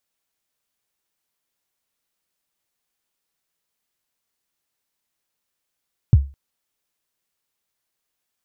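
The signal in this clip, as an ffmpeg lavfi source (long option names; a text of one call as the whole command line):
ffmpeg -f lavfi -i "aevalsrc='0.631*pow(10,-3*t/0.3)*sin(2*PI*(140*0.035/log(69/140)*(exp(log(69/140)*min(t,0.035)/0.035)-1)+69*max(t-0.035,0)))':duration=0.21:sample_rate=44100" out.wav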